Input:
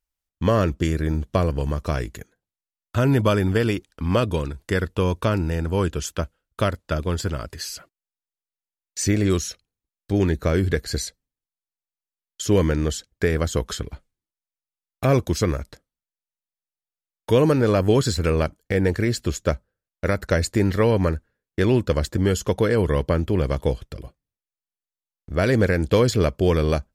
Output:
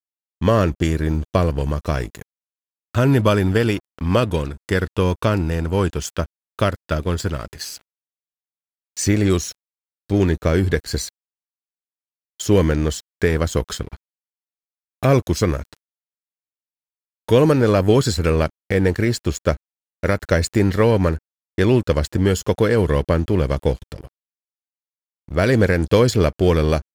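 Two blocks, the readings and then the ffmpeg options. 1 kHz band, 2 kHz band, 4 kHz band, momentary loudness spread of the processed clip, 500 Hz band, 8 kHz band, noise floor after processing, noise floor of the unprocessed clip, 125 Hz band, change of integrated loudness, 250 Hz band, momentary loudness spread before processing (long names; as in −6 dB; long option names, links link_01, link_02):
+3.0 dB, +3.0 dB, +2.5 dB, 12 LU, +3.0 dB, +2.0 dB, below −85 dBFS, below −85 dBFS, +3.0 dB, +3.0 dB, +3.0 dB, 12 LU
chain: -af "aeval=exprs='sgn(val(0))*max(abs(val(0))-0.00891,0)':channel_layout=same,volume=3.5dB"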